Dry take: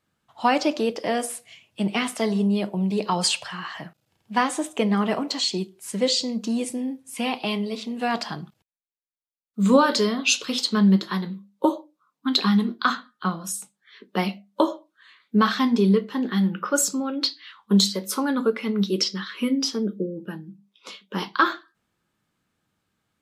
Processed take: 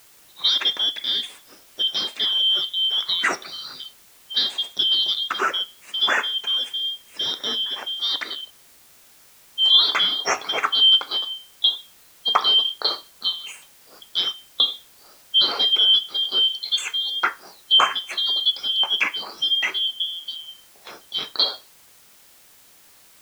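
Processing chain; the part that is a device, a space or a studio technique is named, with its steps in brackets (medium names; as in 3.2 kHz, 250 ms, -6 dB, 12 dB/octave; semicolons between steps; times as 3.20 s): split-band scrambled radio (four frequency bands reordered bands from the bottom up 3412; band-pass 350–3300 Hz; white noise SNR 28 dB); trim +4 dB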